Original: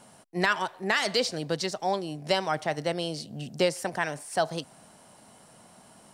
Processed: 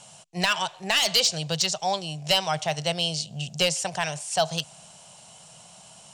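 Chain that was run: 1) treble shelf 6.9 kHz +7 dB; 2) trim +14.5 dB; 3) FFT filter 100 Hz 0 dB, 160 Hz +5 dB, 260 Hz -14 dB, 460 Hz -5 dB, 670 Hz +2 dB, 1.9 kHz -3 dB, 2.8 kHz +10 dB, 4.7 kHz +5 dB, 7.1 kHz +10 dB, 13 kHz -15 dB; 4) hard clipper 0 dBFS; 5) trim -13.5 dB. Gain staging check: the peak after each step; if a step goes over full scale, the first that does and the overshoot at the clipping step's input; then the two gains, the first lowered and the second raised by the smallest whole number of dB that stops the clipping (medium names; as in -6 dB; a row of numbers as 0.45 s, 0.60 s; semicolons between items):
-7.5 dBFS, +7.0 dBFS, +9.5 dBFS, 0.0 dBFS, -13.5 dBFS; step 2, 9.5 dB; step 2 +4.5 dB, step 5 -3.5 dB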